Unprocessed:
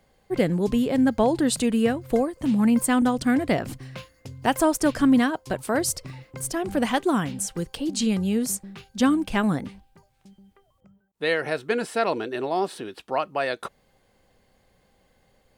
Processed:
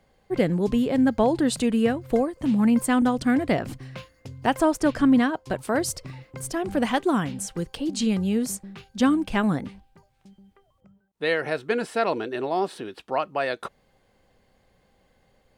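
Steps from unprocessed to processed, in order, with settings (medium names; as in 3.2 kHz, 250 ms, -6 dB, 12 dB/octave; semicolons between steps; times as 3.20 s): treble shelf 6.3 kHz -6.5 dB, from 4.47 s -11.5 dB, from 5.50 s -6 dB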